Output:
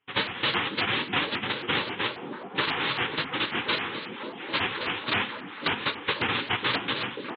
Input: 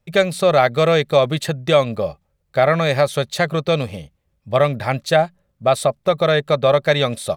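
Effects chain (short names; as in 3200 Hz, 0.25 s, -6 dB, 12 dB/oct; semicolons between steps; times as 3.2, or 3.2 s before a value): ending faded out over 0.69 s; bell 2600 Hz +7 dB 2.1 oct; compressor, threshold -17 dBFS, peak gain reduction 10 dB; noise vocoder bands 1; flange 0.72 Hz, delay 6.2 ms, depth 3.7 ms, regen -48%; delay with a stepping band-pass 0.541 s, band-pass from 250 Hz, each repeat 0.7 oct, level -0.5 dB; reverb, pre-delay 3 ms, DRR 8.5 dB; downsampling 8000 Hz; Butterworth band-stop 660 Hz, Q 3.8; shaped vibrato saw up 3.7 Hz, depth 250 cents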